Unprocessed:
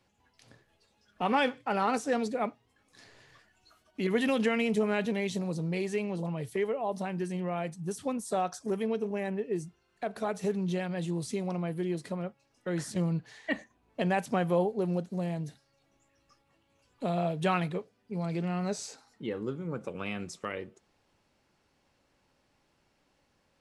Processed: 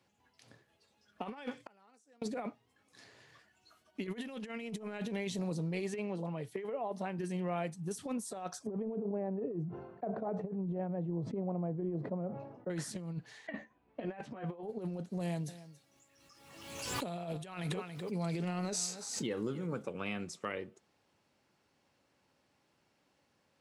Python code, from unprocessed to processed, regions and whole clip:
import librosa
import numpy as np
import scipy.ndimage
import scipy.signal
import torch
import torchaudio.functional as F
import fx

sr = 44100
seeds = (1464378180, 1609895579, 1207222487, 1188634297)

y = fx.chain(x, sr, fx.peak_eq(hz=7600.0, db=10.0, octaves=1.5),
    fx.gate_flip(shuts_db=-33.0, range_db=-35), at=(1.51, 2.22))
y = fx.chain(y, sr, fx.highpass(hz=170.0, slope=6),
    fx.high_shelf(hz=4300.0, db=-8.5), at=(5.94, 7.19))
y = fx.chain(y, sr, fx.cheby1_bandpass(low_hz=110.0, high_hz=730.0, order=2),
    fx.sustainer(db_per_s=57.0), at=(8.67, 12.7))
y = fx.chain(y, sr, fx.lowpass(hz=2700.0, slope=12),
    fx.doubler(ms=14.0, db=-4.0), at=(13.47, 14.63))
y = fx.chain(y, sr, fx.high_shelf(hz=4200.0, db=10.5),
    fx.echo_single(ms=280, db=-16.5),
    fx.pre_swell(db_per_s=45.0), at=(15.2, 19.83))
y = scipy.signal.sosfilt(scipy.signal.butter(2, 91.0, 'highpass', fs=sr, output='sos'), y)
y = fx.over_compress(y, sr, threshold_db=-32.0, ratio=-0.5)
y = y * 10.0 ** (-4.5 / 20.0)